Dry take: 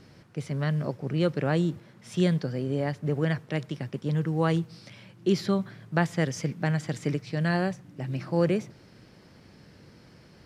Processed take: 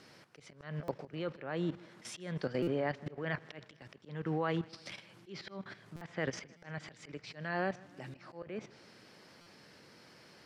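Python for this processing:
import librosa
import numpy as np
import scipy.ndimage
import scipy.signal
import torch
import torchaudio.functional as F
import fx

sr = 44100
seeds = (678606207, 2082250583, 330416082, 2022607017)

y = fx.highpass(x, sr, hz=620.0, slope=6)
y = fx.level_steps(y, sr, step_db=13)
y = fx.env_lowpass_down(y, sr, base_hz=2600.0, full_db=-35.5)
y = fx.auto_swell(y, sr, attack_ms=269.0)
y = fx.echo_feedback(y, sr, ms=156, feedback_pct=55, wet_db=-23.5)
y = fx.buffer_glitch(y, sr, at_s=(0.83, 2.62, 5.96, 6.57, 9.41), block=256, repeats=8)
y = F.gain(torch.from_numpy(y), 6.5).numpy()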